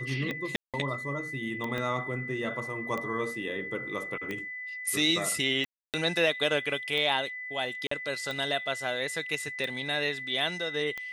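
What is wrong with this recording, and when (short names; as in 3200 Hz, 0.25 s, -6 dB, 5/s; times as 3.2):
tick 45 rpm -21 dBFS
tone 2000 Hz -36 dBFS
0.56–0.74 gap 0.177 s
1.78 pop -20 dBFS
5.65–5.94 gap 0.288 s
7.87–7.91 gap 44 ms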